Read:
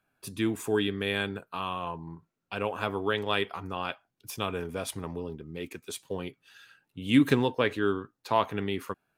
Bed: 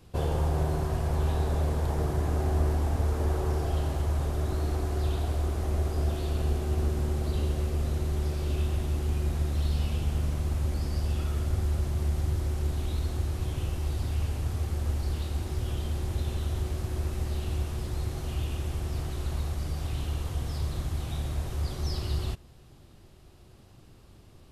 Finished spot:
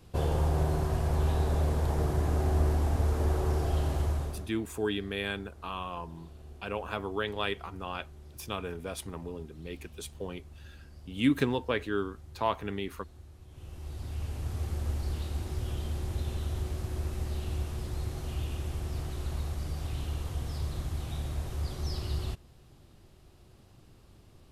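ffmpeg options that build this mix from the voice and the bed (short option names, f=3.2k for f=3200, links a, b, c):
-filter_complex "[0:a]adelay=4100,volume=-4dB[a];[1:a]volume=17.5dB,afade=t=out:st=4.03:d=0.48:silence=0.0944061,afade=t=in:st=13.48:d=1.19:silence=0.125893[b];[a][b]amix=inputs=2:normalize=0"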